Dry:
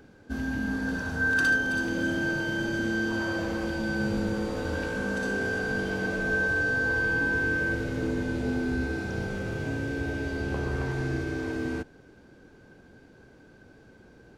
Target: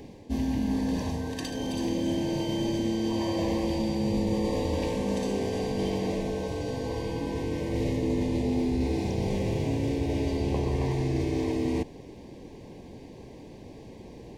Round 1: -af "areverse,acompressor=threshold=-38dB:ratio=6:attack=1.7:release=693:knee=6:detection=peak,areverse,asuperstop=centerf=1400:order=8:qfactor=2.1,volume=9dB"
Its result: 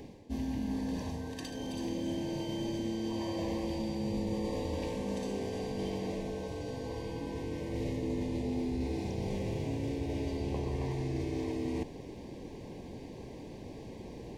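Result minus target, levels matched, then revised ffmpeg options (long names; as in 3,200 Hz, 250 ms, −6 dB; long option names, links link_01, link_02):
downward compressor: peak gain reduction +7 dB
-af "areverse,acompressor=threshold=-29.5dB:ratio=6:attack=1.7:release=693:knee=6:detection=peak,areverse,asuperstop=centerf=1400:order=8:qfactor=2.1,volume=9dB"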